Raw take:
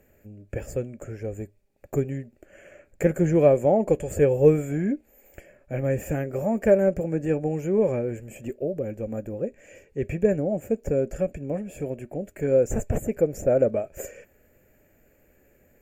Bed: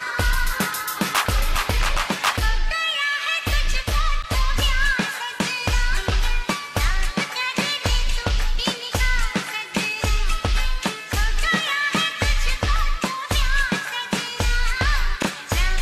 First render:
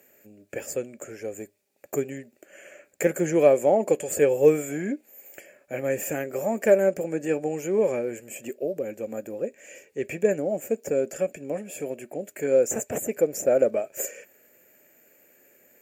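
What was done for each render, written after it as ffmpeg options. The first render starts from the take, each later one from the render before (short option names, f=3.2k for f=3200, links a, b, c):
-af "highpass=270,highshelf=f=2.5k:g=10.5"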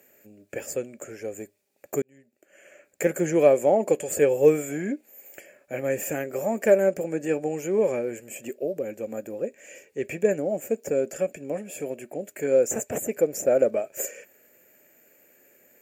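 -filter_complex "[0:a]asplit=2[a][b];[a]atrim=end=2.02,asetpts=PTS-STARTPTS,afade=t=out:st=2.016:d=0.004:c=hsin[c];[b]atrim=start=2.02,asetpts=PTS-STARTPTS,afade=t=in:d=1.13[d];[c][d]concat=n=2:v=0:a=1"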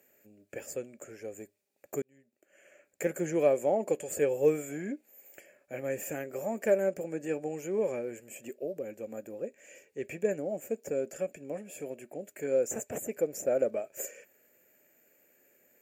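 -af "volume=-7.5dB"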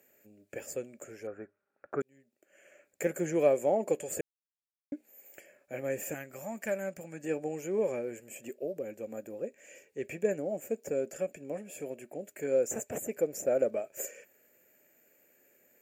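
-filter_complex "[0:a]asettb=1/sr,asplit=3[a][b][c];[a]atrim=end=1.274[d];[b]atrim=start=1.27:end=2.01,asetpts=PTS-STARTPTS,afade=t=in:d=0.004:c=qsin,afade=t=out:st=0.736:d=0.004:c=qsin,lowpass=f=1.4k:t=q:w=8.6[e];[c]atrim=start=2.006[f];[d][e]acrossfade=d=0.004:c1=hsin:c2=qsin[g];[g][f]acrossfade=d=0.004:c1=qsin:c2=hsin,asettb=1/sr,asplit=3[h][i][j];[h]atrim=end=6.144[k];[i]atrim=start=6.14:end=7.24,asetpts=PTS-STARTPTS,afade=t=in:d=0.004:c=qsin,afade=t=out:st=1.096:d=0.004:c=qsin,equalizer=f=420:t=o:w=1.2:g=-13[l];[j]atrim=start=7.236[m];[k][l]acrossfade=d=0.004:c1=hsin:c2=qsin[n];[n][m]acrossfade=d=0.004:c1=qsin:c2=hsin,asplit=3[o][p][q];[o]atrim=end=4.21,asetpts=PTS-STARTPTS,afade=t=out:st=4.206:d=0.004:c=hsin[r];[p]atrim=start=4.21:end=4.92,asetpts=PTS-STARTPTS,volume=0[s];[q]atrim=start=4.92,asetpts=PTS-STARTPTS,afade=t=in:d=0.004:c=hsin[t];[r][s][t]concat=n=3:v=0:a=1"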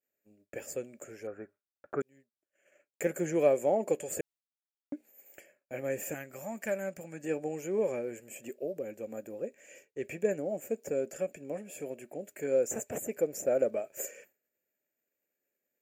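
-af "agate=range=-33dB:threshold=-52dB:ratio=3:detection=peak"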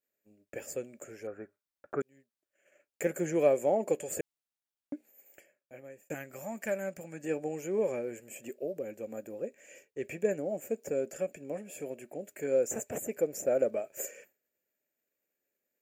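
-filter_complex "[0:a]asplit=2[a][b];[a]atrim=end=6.1,asetpts=PTS-STARTPTS,afade=t=out:st=4.94:d=1.16[c];[b]atrim=start=6.1,asetpts=PTS-STARTPTS,afade=t=in:d=0.004:c=hsin[d];[c][d]concat=n=2:v=0:a=1"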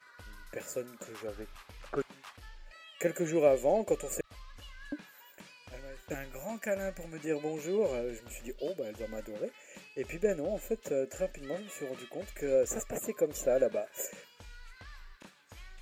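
-filter_complex "[1:a]volume=-30dB[a];[0:a][a]amix=inputs=2:normalize=0"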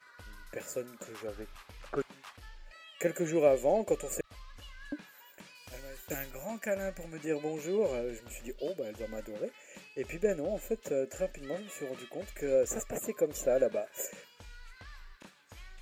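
-filter_complex "[0:a]asettb=1/sr,asplit=3[a][b][c];[a]atrim=end=5.554[d];[b]atrim=start=5.55:end=6.31,asetpts=PTS-STARTPTS,afade=t=in:d=0.004:c=qsin,afade=t=out:st=0.756:d=0.004:c=qsin,aemphasis=mode=production:type=50fm[e];[c]atrim=start=6.306[f];[d][e]acrossfade=d=0.004:c1=hsin:c2=qsin[g];[g][f]acrossfade=d=0.004:c1=qsin:c2=hsin"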